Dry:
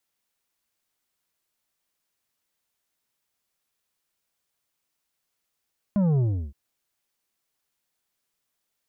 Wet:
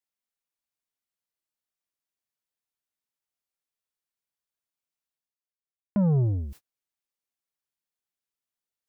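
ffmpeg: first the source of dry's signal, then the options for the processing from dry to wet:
-f lavfi -i "aevalsrc='0.106*clip((0.57-t)/0.34,0,1)*tanh(2.51*sin(2*PI*210*0.57/log(65/210)*(exp(log(65/210)*t/0.57)-1)))/tanh(2.51)':d=0.57:s=44100"
-af "areverse,acompressor=mode=upward:threshold=0.02:ratio=2.5,areverse,agate=range=0.0126:threshold=0.00794:ratio=16:detection=peak"

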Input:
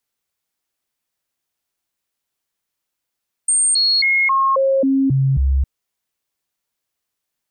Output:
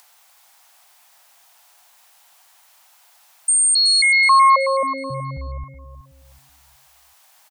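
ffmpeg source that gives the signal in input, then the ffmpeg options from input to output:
-f lavfi -i "aevalsrc='0.237*clip(min(mod(t,0.27),0.27-mod(t,0.27))/0.005,0,1)*sin(2*PI*8630*pow(2,-floor(t/0.27)/1)*mod(t,0.27))':d=2.16:s=44100"
-filter_complex "[0:a]lowshelf=f=520:t=q:w=3:g=-13.5,acompressor=mode=upward:threshold=0.0224:ratio=2.5,asplit=2[s0][s1];[s1]aecho=0:1:374|748|1122|1496:0.282|0.093|0.0307|0.0101[s2];[s0][s2]amix=inputs=2:normalize=0"

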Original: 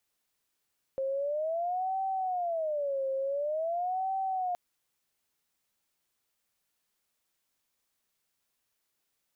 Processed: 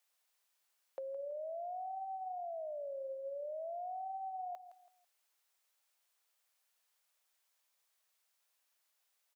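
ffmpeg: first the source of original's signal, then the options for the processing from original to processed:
-f lavfi -i "aevalsrc='0.0376*sin(2*PI*(652.5*t-117.5/(2*PI*0.47)*sin(2*PI*0.47*t)))':d=3.57:s=44100"
-af "highpass=f=530:w=0.5412,highpass=f=530:w=1.3066,acompressor=threshold=0.00794:ratio=6,aecho=1:1:165|330|495:0.224|0.0716|0.0229"

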